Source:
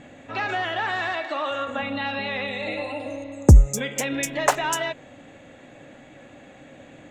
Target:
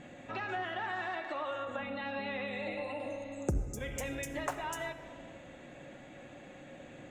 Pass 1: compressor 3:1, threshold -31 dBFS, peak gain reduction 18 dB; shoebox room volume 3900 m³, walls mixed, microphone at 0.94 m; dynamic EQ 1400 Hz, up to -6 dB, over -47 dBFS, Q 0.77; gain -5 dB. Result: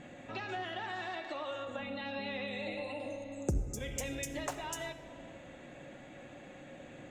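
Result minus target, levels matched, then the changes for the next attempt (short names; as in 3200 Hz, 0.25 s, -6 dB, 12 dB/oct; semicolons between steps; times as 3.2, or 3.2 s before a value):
4000 Hz band +4.0 dB
change: dynamic EQ 4700 Hz, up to -6 dB, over -47 dBFS, Q 0.77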